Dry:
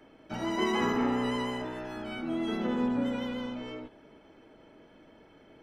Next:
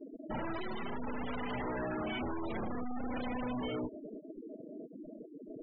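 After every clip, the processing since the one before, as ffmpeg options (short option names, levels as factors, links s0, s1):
-af "aeval=exprs='(tanh(79.4*val(0)+0.4)-tanh(0.4))/79.4':c=same,aeval=exprs='0.0178*sin(PI/2*2.24*val(0)/0.0178)':c=same,afftfilt=real='re*gte(hypot(re,im),0.02)':imag='im*gte(hypot(re,im),0.02)':win_size=1024:overlap=0.75,volume=1.33"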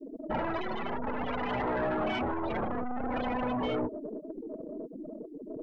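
-af "adynamicequalizer=threshold=0.00224:dfrequency=730:dqfactor=0.86:tfrequency=730:tqfactor=0.86:attack=5:release=100:ratio=0.375:range=3:mode=boostabove:tftype=bell,aeval=exprs='(tanh(28.2*val(0)+0.3)-tanh(0.3))/28.2':c=same,volume=1.88"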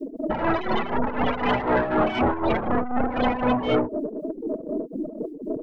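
-filter_complex "[0:a]asplit=2[s0][s1];[s1]alimiter=level_in=2:limit=0.0631:level=0:latency=1,volume=0.501,volume=0.841[s2];[s0][s2]amix=inputs=2:normalize=0,tremolo=f=4:d=0.7,volume=2.66"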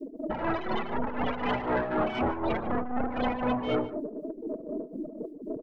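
-af "aecho=1:1:146:0.141,volume=0.473"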